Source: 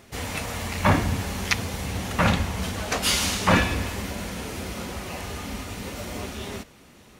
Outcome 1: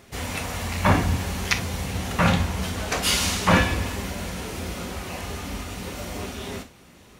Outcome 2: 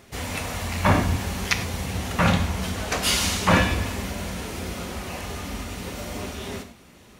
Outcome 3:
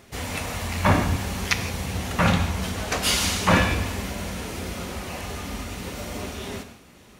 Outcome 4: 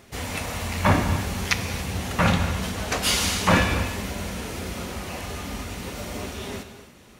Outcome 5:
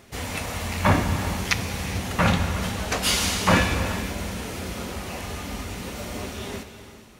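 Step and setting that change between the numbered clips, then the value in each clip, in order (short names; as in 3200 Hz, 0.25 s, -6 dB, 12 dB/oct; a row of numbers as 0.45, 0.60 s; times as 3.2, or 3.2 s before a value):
non-linear reverb, gate: 80, 130, 190, 310, 480 ms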